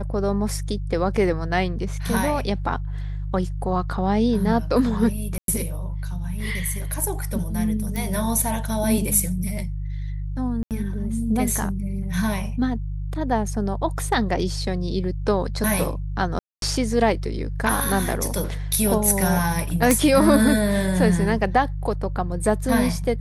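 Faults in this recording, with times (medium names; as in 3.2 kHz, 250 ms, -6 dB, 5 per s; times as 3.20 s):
hum 50 Hz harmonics 3 -28 dBFS
5.38–5.48 s: dropout 102 ms
7.96 s: pop
10.63–10.71 s: dropout 78 ms
16.39–16.62 s: dropout 232 ms
19.91 s: pop -4 dBFS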